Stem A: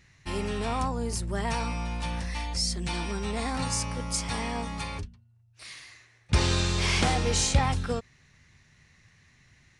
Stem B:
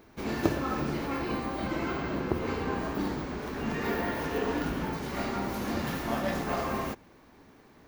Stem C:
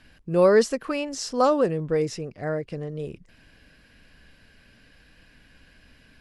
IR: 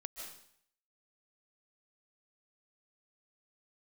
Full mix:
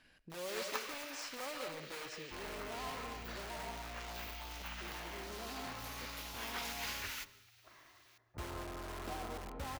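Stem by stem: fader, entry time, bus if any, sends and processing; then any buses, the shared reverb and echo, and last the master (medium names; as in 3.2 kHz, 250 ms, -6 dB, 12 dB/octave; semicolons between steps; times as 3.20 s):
-6.5 dB, 2.05 s, bus A, send -4 dB, low-pass 1.3 kHz 24 dB/octave; comb 3 ms, depth 39%
+2.5 dB, 0.30 s, no bus, send -13.5 dB, spectral gate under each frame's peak -20 dB weak; auto duck -9 dB, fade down 1.45 s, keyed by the third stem
-10.0 dB, 0.00 s, bus A, send -10.5 dB, none
bus A: 0.0 dB, integer overflow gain 32.5 dB; compression 6:1, threshold -48 dBFS, peak gain reduction 12 dB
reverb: on, RT60 0.65 s, pre-delay 110 ms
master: bass shelf 240 Hz -10 dB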